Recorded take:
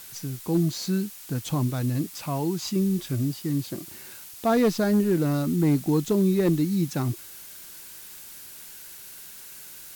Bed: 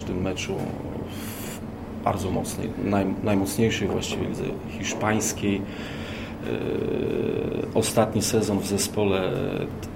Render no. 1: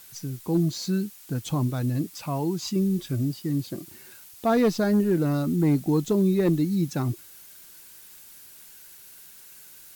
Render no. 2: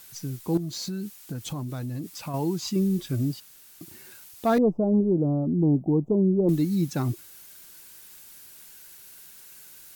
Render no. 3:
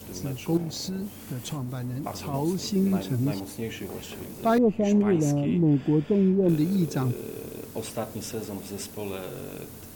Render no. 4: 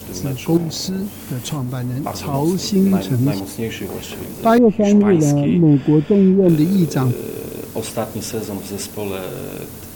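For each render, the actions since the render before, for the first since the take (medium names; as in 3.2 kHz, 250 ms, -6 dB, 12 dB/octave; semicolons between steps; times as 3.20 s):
noise reduction 6 dB, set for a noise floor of -44 dBFS
0.57–2.34 s: compression 12:1, threshold -28 dBFS; 3.40–3.81 s: room tone; 4.58–6.49 s: inverse Chebyshev low-pass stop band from 1.6 kHz
add bed -11.5 dB
trim +9 dB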